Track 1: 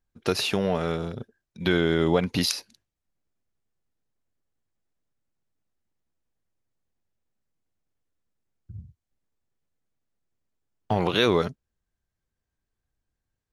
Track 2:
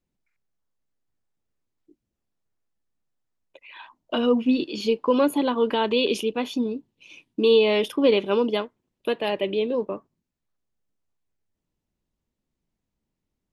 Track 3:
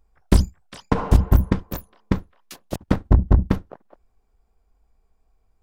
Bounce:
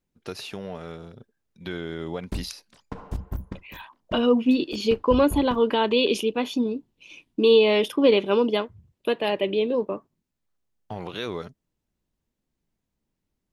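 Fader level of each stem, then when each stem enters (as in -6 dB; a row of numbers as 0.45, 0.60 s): -10.5, +1.0, -16.5 dB; 0.00, 0.00, 2.00 s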